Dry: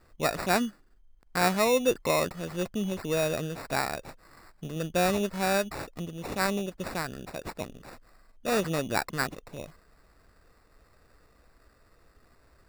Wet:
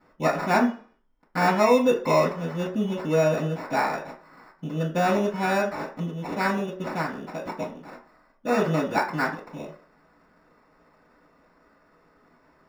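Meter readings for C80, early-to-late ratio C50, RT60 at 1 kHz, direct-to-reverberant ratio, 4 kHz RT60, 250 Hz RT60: 14.0 dB, 9.5 dB, 0.40 s, -10.0 dB, 0.40 s, 0.40 s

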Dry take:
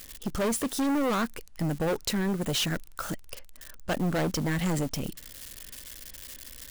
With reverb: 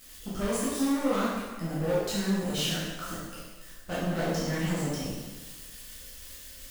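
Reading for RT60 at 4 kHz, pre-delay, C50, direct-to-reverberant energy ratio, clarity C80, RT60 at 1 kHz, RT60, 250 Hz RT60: 1.2 s, 6 ms, -1.5 dB, -9.0 dB, 2.0 dB, 1.3 s, 1.3 s, 1.3 s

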